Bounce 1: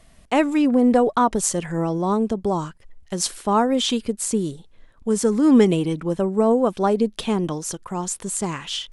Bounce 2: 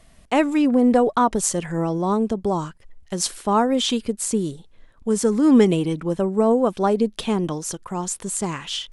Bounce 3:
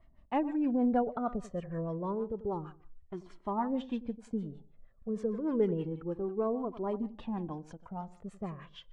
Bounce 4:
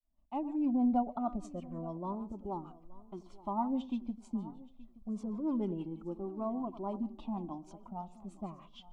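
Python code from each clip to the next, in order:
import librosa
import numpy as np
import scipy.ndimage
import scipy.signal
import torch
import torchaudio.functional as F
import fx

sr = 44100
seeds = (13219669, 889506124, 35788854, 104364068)

y1 = x
y2 = fx.echo_feedback(y1, sr, ms=92, feedback_pct=29, wet_db=-15)
y2 = fx.filter_lfo_lowpass(y2, sr, shape='sine', hz=6.4, low_hz=500.0, high_hz=2300.0, q=0.72)
y2 = fx.comb_cascade(y2, sr, direction='falling', hz=0.29)
y2 = y2 * librosa.db_to_amplitude(-7.5)
y3 = fx.fade_in_head(y2, sr, length_s=0.7)
y3 = fx.fixed_phaser(y3, sr, hz=460.0, stages=6)
y3 = fx.echo_feedback(y3, sr, ms=874, feedback_pct=25, wet_db=-20.0)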